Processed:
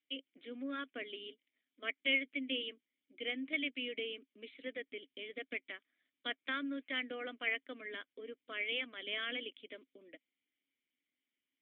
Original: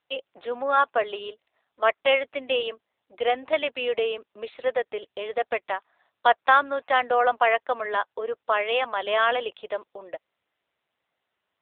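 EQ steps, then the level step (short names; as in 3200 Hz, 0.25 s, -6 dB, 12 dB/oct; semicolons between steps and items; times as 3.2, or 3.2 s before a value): vowel filter i; +2.5 dB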